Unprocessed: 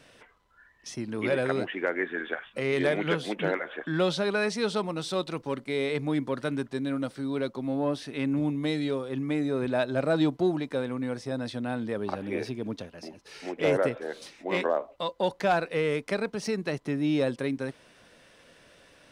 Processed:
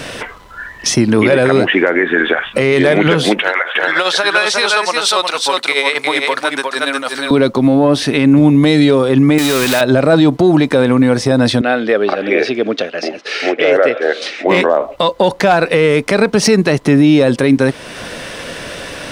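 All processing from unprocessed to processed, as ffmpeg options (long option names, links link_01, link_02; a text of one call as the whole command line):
ffmpeg -i in.wav -filter_complex "[0:a]asettb=1/sr,asplit=3[link_01][link_02][link_03];[link_01]atrim=end=3.394[link_04];[link_02]atrim=start=3.39:end=7.31,asetpts=PTS-STARTPTS,afade=type=in:duration=0.004:curve=qsin,afade=type=out:start_time=3.916:duration=0.004:curve=qsin,tremolo=f=10:d=0.71,highpass=900,aecho=1:1:360:0.596,atrim=end_sample=172872[link_05];[link_03]atrim=start=7.306[link_06];[link_04][link_05]acrossfade=duration=0.004:curve1=hsin:curve2=qsin[link_07];[link_07][link_06]acrossfade=duration=0.004:curve1=qsin:curve2=hsin,asettb=1/sr,asplit=3[link_08][link_09][link_10];[link_08]atrim=end=9.384[link_11];[link_09]atrim=start=9.38:end=9.81,asetpts=PTS-STARTPTS,afade=type=in:duration=0.004:curve=qsin,afade=type=out:start_time=0.426:duration=0.004:curve=qsin,aeval=exprs='val(0)+0.5*0.0211*sgn(val(0))':channel_layout=same,tiltshelf=frequency=1400:gain=-10[link_12];[link_10]atrim=start=9.806[link_13];[link_11][link_12]acrossfade=duration=0.004:curve1=hsin:curve2=qsin[link_14];[link_14][link_13]acrossfade=duration=0.004:curve1=qsin:curve2=hsin,asettb=1/sr,asplit=3[link_15][link_16][link_17];[link_15]atrim=end=11.614[link_18];[link_16]atrim=start=11.61:end=14.47,asetpts=PTS-STARTPTS,afade=type=in:duration=0.004:curve=qsin,afade=type=out:start_time=2.856:duration=0.004:curve=qsin,highpass=470,lowpass=3700,equalizer=frequency=950:width=4.3:gain=-15[link_19];[link_17]atrim=start=14.466[link_20];[link_18][link_19]acrossfade=duration=0.004:curve1=hsin:curve2=qsin[link_21];[link_21][link_20]acrossfade=duration=0.004:curve1=qsin:curve2=hsin,acompressor=threshold=-48dB:ratio=1.5,alimiter=level_in=30.5dB:limit=-1dB:release=50:level=0:latency=1,volume=-1dB" out.wav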